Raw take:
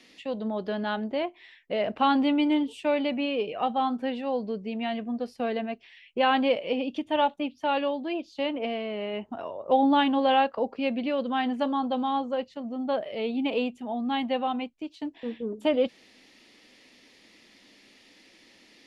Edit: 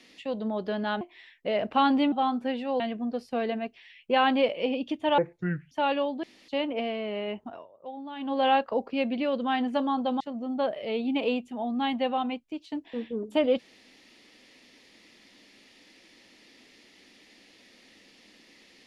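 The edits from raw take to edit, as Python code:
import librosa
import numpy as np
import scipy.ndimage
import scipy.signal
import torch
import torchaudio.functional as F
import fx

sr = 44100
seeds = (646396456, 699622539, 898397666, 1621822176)

y = fx.edit(x, sr, fx.cut(start_s=1.01, length_s=0.25),
    fx.cut(start_s=2.37, length_s=1.33),
    fx.cut(start_s=4.38, length_s=0.49),
    fx.speed_span(start_s=7.25, length_s=0.32, speed=0.6),
    fx.room_tone_fill(start_s=8.09, length_s=0.25),
    fx.fade_down_up(start_s=9.05, length_s=1.45, db=-18.5, fade_s=0.49, curve='qsin'),
    fx.cut(start_s=12.06, length_s=0.44), tone=tone)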